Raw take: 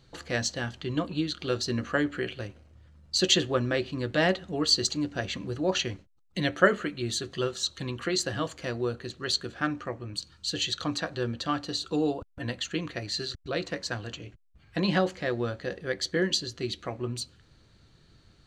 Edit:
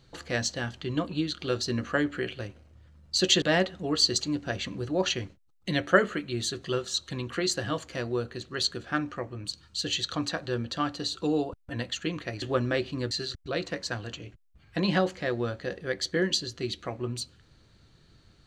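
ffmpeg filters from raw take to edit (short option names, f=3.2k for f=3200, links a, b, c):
-filter_complex "[0:a]asplit=4[a][b][c][d];[a]atrim=end=3.422[e];[b]atrim=start=4.108:end=13.112[f];[c]atrim=start=3.418:end=4.112[g];[d]atrim=start=13.108[h];[e][f]acrossfade=d=0.004:c1=hsin:c2=hsin[i];[i][g]acrossfade=d=0.004:c1=hsin:c2=hsin[j];[j][h]acrossfade=d=0.004:c1=hsin:c2=hsin"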